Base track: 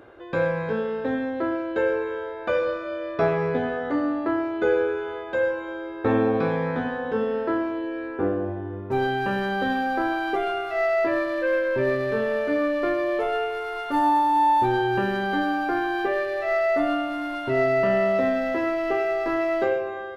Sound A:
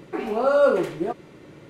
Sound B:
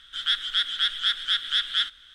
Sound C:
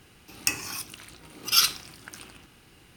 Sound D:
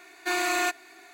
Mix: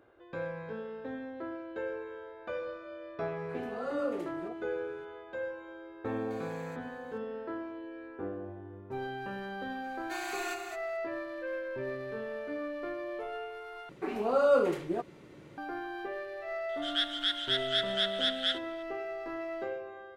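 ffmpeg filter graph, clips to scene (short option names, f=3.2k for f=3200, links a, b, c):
-filter_complex "[1:a]asplit=2[a][b];[4:a]asplit=2[c][d];[0:a]volume=-14dB[e];[a]acrossover=split=840[f][g];[f]adelay=50[h];[h][g]amix=inputs=2:normalize=0[i];[c]acompressor=threshold=-37dB:ratio=6:attack=3.2:release=140:knee=1:detection=peak[j];[d]aecho=1:1:210:0.473[k];[e]asplit=2[l][m];[l]atrim=end=13.894[n];[b]atrim=end=1.69,asetpts=PTS-STARTPTS,volume=-6.5dB[o];[m]atrim=start=15.576[p];[i]atrim=end=1.69,asetpts=PTS-STARTPTS,volume=-15dB,afade=t=in:d=0.004:c=hsin,afade=t=out:st=1.686:d=0.004:c=hsin,adelay=3360[q];[j]atrim=end=1.13,asetpts=PTS-STARTPTS,volume=-15.5dB,afade=t=in:d=0.004:c=hsin,afade=t=out:st=1.126:d=0.004:c=hsin,adelay=6050[r];[k]atrim=end=1.13,asetpts=PTS-STARTPTS,volume=-12.5dB,afade=t=in:d=0.004:c=hsin,afade=t=out:st=1.126:d=0.004:c=hsin,adelay=9840[s];[2:a]atrim=end=2.14,asetpts=PTS-STARTPTS,volume=-6.5dB,afade=t=in:d=0.004:c=hsin,afade=t=out:st=2.136:d=0.004:c=hsin,adelay=16690[t];[n][o]acrossfade=d=0.004:c1=hsin:c2=hsin[u];[u][p]acrossfade=d=0.004:c1=hsin:c2=hsin[v];[v][q][r][s][t]amix=inputs=5:normalize=0"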